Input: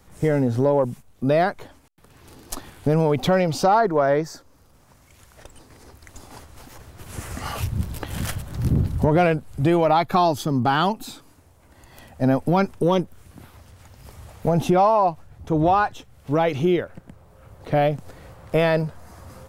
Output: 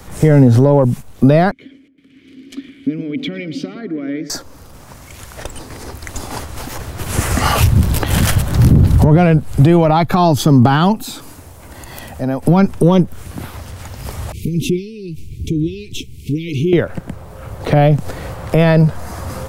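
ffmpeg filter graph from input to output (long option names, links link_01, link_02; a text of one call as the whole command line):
ffmpeg -i in.wav -filter_complex "[0:a]asettb=1/sr,asplit=3[link_01][link_02][link_03];[link_01]atrim=end=1.514[link_04];[link_02]atrim=start=1.51:end=4.3,asetpts=PTS-STARTPTS,afade=type=in:duration=0.004:curve=qsin,afade=type=out:start_time=2.786:duration=0.004:curve=qsin,acompressor=threshold=-23dB:ratio=2.5:attack=3.2:release=140:knee=1:detection=peak,asplit=3[link_05][link_06][link_07];[link_05]bandpass=frequency=270:width_type=q:width=8,volume=0dB[link_08];[link_06]bandpass=frequency=2290:width_type=q:width=8,volume=-6dB[link_09];[link_07]bandpass=frequency=3010:width_type=q:width=8,volume=-9dB[link_10];[link_08][link_09][link_10]amix=inputs=3:normalize=0,asplit=2[link_11][link_12];[link_12]adelay=115,lowpass=frequency=1000:poles=1,volume=-10dB,asplit=2[link_13][link_14];[link_14]adelay=115,lowpass=frequency=1000:poles=1,volume=0.48,asplit=2[link_15][link_16];[link_16]adelay=115,lowpass=frequency=1000:poles=1,volume=0.48,asplit=2[link_17][link_18];[link_18]adelay=115,lowpass=frequency=1000:poles=1,volume=0.48,asplit=2[link_19][link_20];[link_20]adelay=115,lowpass=frequency=1000:poles=1,volume=0.48[link_21];[link_11][link_13][link_15][link_17][link_19][link_21]amix=inputs=6:normalize=0,atrim=end_sample=123039[link_22];[link_03]atrim=start=4.296[link_23];[link_04][link_22]acrossfade=duration=0.004:curve1=hsin:curve2=qsin[link_24];[link_24][link_23]acrossfade=duration=0.004:curve1=qsin:curve2=hsin,asettb=1/sr,asplit=3[link_25][link_26][link_27];[link_25]atrim=end=10.964[link_28];[link_26]atrim=start=10.96:end=12.43,asetpts=PTS-STARTPTS,afade=type=in:duration=0.004:curve=qsin,afade=type=out:start_time=1.466:duration=0.004:curve=qsin,highshelf=frequency=7700:gain=5,acompressor=threshold=-46dB:ratio=2:attack=3.2:release=140:knee=1:detection=peak[link_29];[link_27]atrim=start=12.426[link_30];[link_28][link_29]acrossfade=duration=0.004:curve1=hsin:curve2=qsin[link_31];[link_31][link_30]acrossfade=duration=0.004:curve1=qsin:curve2=hsin,asettb=1/sr,asplit=3[link_32][link_33][link_34];[link_32]atrim=end=14.324[link_35];[link_33]atrim=start=14.32:end=16.73,asetpts=PTS-STARTPTS,afade=type=in:duration=0.004:curve=qsin,afade=type=out:start_time=2.406:duration=0.004:curve=qsin,acompressor=threshold=-33dB:ratio=3:attack=3.2:release=140:knee=1:detection=peak,asuperstop=centerf=970:order=20:qfactor=0.54,adynamicequalizer=threshold=0.00158:dfrequency=2300:dqfactor=0.7:tfrequency=2300:tqfactor=0.7:attack=5:release=100:ratio=0.375:range=2.5:mode=cutabove:tftype=highshelf[link_36];[link_34]atrim=start=16.726[link_37];[link_35][link_36]acrossfade=duration=0.004:curve1=hsin:curve2=qsin[link_38];[link_38][link_37]acrossfade=duration=0.004:curve1=qsin:curve2=hsin,acrossover=split=230[link_39][link_40];[link_40]acompressor=threshold=-27dB:ratio=6[link_41];[link_39][link_41]amix=inputs=2:normalize=0,alimiter=level_in=17.5dB:limit=-1dB:release=50:level=0:latency=1,volume=-1dB" out.wav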